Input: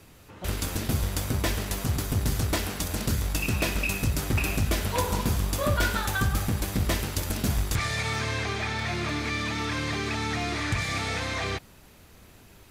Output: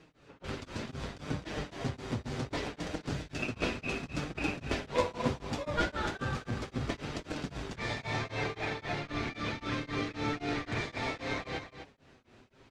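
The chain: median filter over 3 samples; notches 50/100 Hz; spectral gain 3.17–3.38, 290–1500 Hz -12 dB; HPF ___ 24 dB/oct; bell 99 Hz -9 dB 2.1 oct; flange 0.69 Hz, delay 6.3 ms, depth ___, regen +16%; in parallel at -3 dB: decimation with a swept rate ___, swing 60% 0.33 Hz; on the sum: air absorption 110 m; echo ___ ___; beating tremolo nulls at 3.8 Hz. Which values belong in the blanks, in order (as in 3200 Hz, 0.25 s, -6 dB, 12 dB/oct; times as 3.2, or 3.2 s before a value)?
52 Hz, 2 ms, 37×, 0.256 s, -9.5 dB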